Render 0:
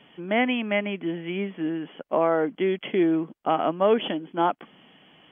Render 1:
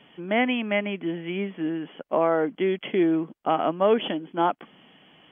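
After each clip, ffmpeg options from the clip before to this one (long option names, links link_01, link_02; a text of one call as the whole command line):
ffmpeg -i in.wav -af anull out.wav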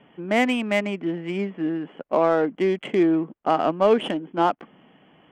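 ffmpeg -i in.wav -af "adynamicsmooth=sensitivity=3:basefreq=2000,volume=2.5dB" out.wav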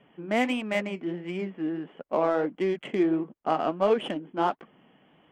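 ffmpeg -i in.wav -af "flanger=delay=1.6:depth=7.5:regen=-61:speed=1.5:shape=sinusoidal,volume=-1dB" out.wav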